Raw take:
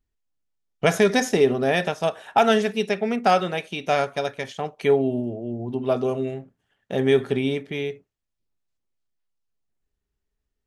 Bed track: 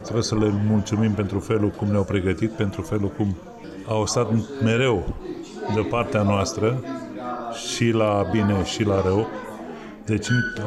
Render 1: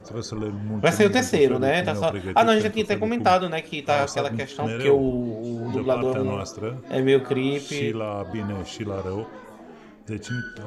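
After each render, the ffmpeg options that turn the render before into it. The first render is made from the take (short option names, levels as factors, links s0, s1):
-filter_complex "[1:a]volume=0.355[s0];[0:a][s0]amix=inputs=2:normalize=0"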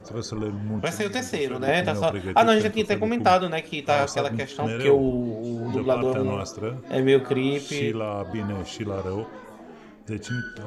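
-filter_complex "[0:a]asettb=1/sr,asplit=3[s0][s1][s2];[s0]atrim=end=0.794[s3];[s1]atrim=start=0.79:end=1.68,asetpts=PTS-STARTPTS,afade=t=in:d=0.004:c=qsin,afade=t=out:st=0.886:d=0.004:c=qsin,acrossover=split=310|860|3700[s4][s5][s6][s7];[s4]acompressor=threshold=0.02:ratio=3[s8];[s5]acompressor=threshold=0.0251:ratio=3[s9];[s6]acompressor=threshold=0.0224:ratio=3[s10];[s7]acompressor=threshold=0.0158:ratio=3[s11];[s8][s9][s10][s11]amix=inputs=4:normalize=0[s12];[s2]atrim=start=1.676[s13];[s3][s12]acrossfade=d=0.004:c1=hsin:c2=qsin[s14];[s14][s13]acrossfade=d=0.004:c1=qsin:c2=hsin"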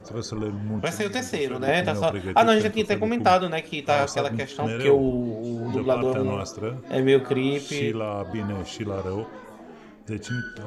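-af anull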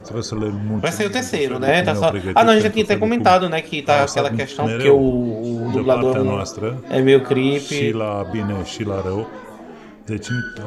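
-af "volume=2.11,alimiter=limit=0.794:level=0:latency=1"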